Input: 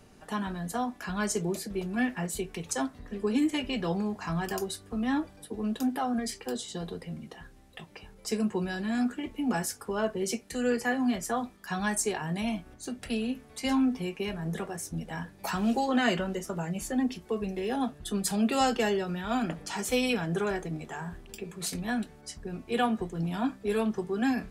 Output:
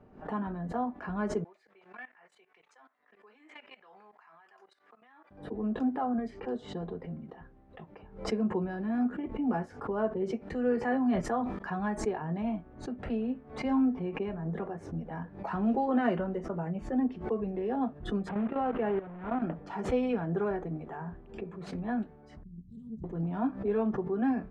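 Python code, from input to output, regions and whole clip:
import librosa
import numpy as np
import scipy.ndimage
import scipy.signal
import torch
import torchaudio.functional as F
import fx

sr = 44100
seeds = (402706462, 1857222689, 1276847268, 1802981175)

y = fx.chain(x, sr, fx.highpass(hz=1400.0, slope=12),
    fx.level_steps(step_db=18),
    fx.peak_eq(hz=2100.0, db=4.0, octaves=0.36), at=(1.44, 5.31))
y = fx.chain(y, sr, fx.high_shelf(hz=2800.0, db=7.0),
    fx.sustainer(db_per_s=40.0), at=(10.75, 11.59))
y = fx.chain(y, sr, fx.delta_mod(bps=64000, step_db=-26.0),
    fx.lowpass(hz=3000.0, slope=24),
    fx.level_steps(step_db=14), at=(18.29, 19.42))
y = fx.chain(y, sr, fx.cheby2_bandstop(low_hz=400.0, high_hz=2700.0, order=4, stop_db=50),
    fx.hum_notches(base_hz=60, count=10),
    fx.doppler_dist(depth_ms=0.25), at=(22.43, 23.04))
y = scipy.signal.sosfilt(scipy.signal.butter(2, 1100.0, 'lowpass', fs=sr, output='sos'), y)
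y = fx.low_shelf(y, sr, hz=120.0, db=-4.5)
y = fx.pre_swell(y, sr, db_per_s=120.0)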